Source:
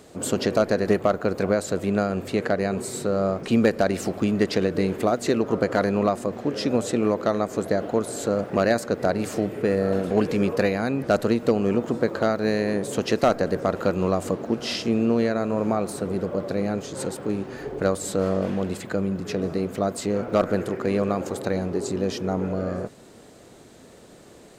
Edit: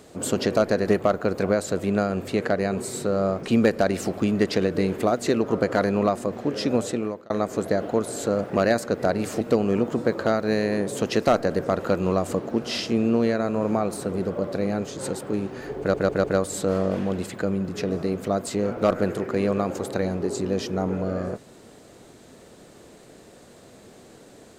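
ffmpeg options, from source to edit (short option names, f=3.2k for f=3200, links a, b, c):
-filter_complex "[0:a]asplit=6[a][b][c][d][e][f];[a]atrim=end=7.3,asetpts=PTS-STARTPTS,afade=t=out:st=6.8:d=0.5[g];[b]atrim=start=7.3:end=9.412,asetpts=PTS-STARTPTS,afade=t=in:d=0.004:c=hsin[h];[c]atrim=start=11.368:end=17.902[i];[d]atrim=start=17.748:end=17.902[j];[e]atrim=start=17.748:end=17.902[k];[f]atrim=start=17.748[l];[g][h]concat=n=2:v=0:a=1[m];[m][i]acrossfade=d=0.004:c1=hsin:c2=hsin[n];[n][j]acrossfade=d=0.004:c1=hsin:c2=hsin[o];[o][k]acrossfade=d=0.004:c1=hsin:c2=hsin[p];[p][l]acrossfade=d=0.004:c1=hsin:c2=hsin"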